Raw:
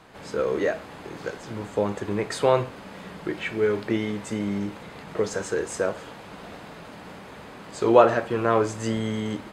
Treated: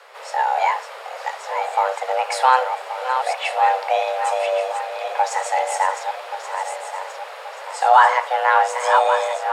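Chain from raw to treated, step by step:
feedback delay that plays each chunk backwards 565 ms, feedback 61%, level −7 dB
frequency shifter +380 Hz
boost into a limiter +6 dB
level −1 dB

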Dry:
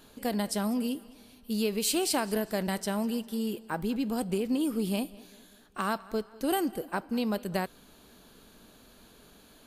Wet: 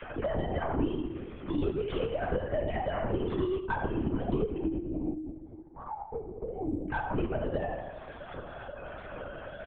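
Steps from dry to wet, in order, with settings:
three sine waves on the formant tracks
noise gate with hold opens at −58 dBFS
high-shelf EQ 2,500 Hz −10.5 dB
mains-hum notches 50/100/150/200/250/300 Hz
downward compressor 10 to 1, threshold −36 dBFS, peak gain reduction 19 dB
sine wavefolder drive 3 dB, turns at −28 dBFS
flanger 1.1 Hz, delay 4.7 ms, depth 8.3 ms, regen +18%
0:04.59–0:06.90: formant resonators in series u
repeating echo 82 ms, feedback 52%, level −14 dB
convolution reverb RT60 0.80 s, pre-delay 10 ms, DRR 0.5 dB
linear-prediction vocoder at 8 kHz whisper
multiband upward and downward compressor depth 70%
level +1.5 dB

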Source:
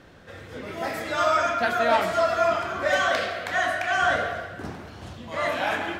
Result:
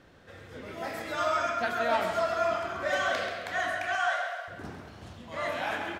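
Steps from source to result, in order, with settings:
0:03.95–0:04.48: Butterworth high-pass 610 Hz 48 dB per octave
repeating echo 133 ms, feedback 27%, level −9 dB
level −6.5 dB

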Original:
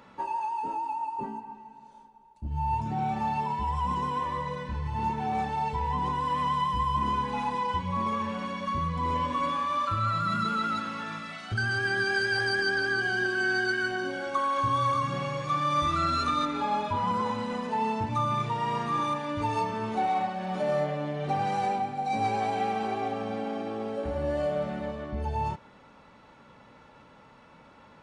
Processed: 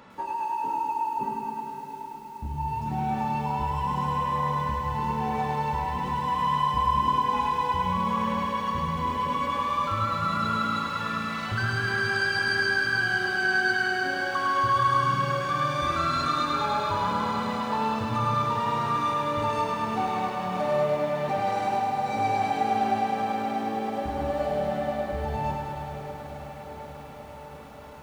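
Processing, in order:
in parallel at −0.5 dB: downward compressor, threshold −37 dBFS, peak gain reduction 14 dB
on the sum: feedback delay with all-pass diffusion 542 ms, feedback 73%, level −10 dB
feedback echo at a low word length 104 ms, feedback 80%, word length 9 bits, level −5 dB
level −3 dB

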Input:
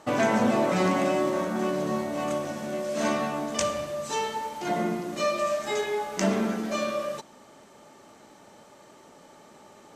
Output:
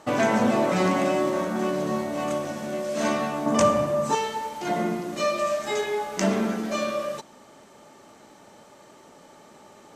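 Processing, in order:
0:03.46–0:04.15: graphic EQ with 10 bands 125 Hz +9 dB, 250 Hz +9 dB, 500 Hz +3 dB, 1,000 Hz +9 dB, 4,000 Hz −4 dB
level +1.5 dB

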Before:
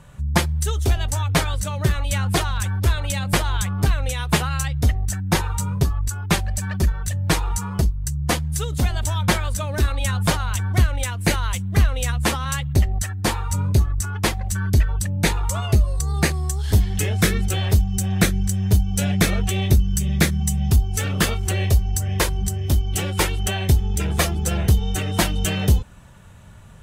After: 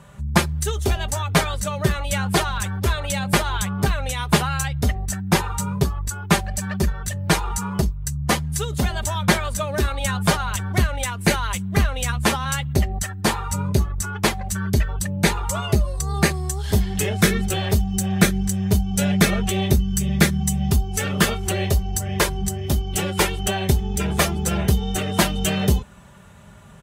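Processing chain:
high-pass filter 57 Hz
parametric band 760 Hz +2.5 dB 2.9 octaves
comb filter 5 ms, depth 39%

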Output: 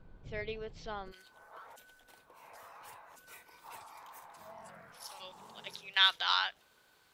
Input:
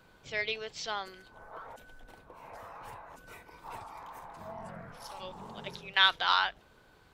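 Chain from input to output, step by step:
spectral tilt −4 dB per octave, from 0:01.11 +3 dB per octave
level −6 dB

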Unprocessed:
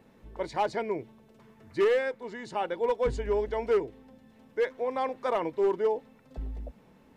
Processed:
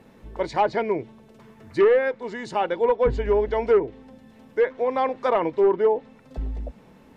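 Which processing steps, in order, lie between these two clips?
treble cut that deepens with the level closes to 1,800 Hz, closed at −21.5 dBFS
level +7 dB

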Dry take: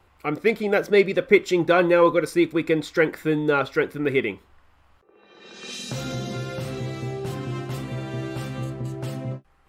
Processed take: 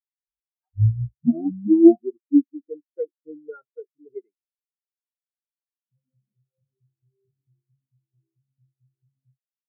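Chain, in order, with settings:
turntable start at the beginning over 2.83 s
every bin expanded away from the loudest bin 4 to 1
level +4 dB

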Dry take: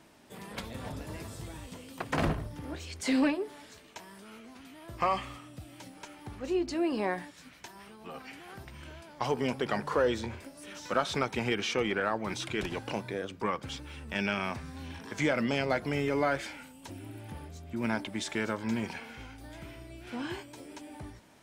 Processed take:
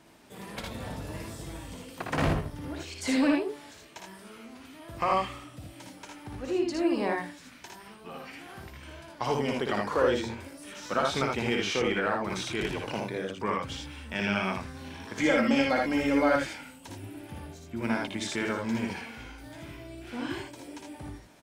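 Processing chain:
0:15.20–0:16.36: comb filter 3.7 ms, depth 74%
ambience of single reflections 58 ms −4 dB, 79 ms −4 dB

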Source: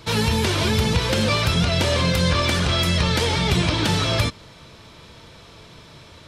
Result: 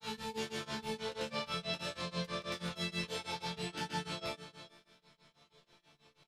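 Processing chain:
low-shelf EQ 320 Hz −5.5 dB
resonators tuned to a chord D3 minor, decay 0.55 s
multi-tap delay 177/487 ms −17/−11.5 dB
granular cloud 187 ms, grains 6.2 per second, pitch spread up and down by 0 semitones
level +1 dB

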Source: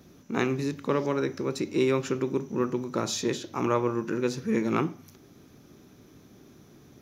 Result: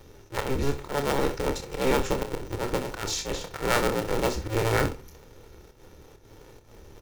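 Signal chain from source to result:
sub-harmonics by changed cycles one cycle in 2, inverted
low-shelf EQ 64 Hz +10.5 dB
volume swells 122 ms
comb filter 2.2 ms, depth 35%
ambience of single reflections 28 ms −7.5 dB, 65 ms −13.5 dB

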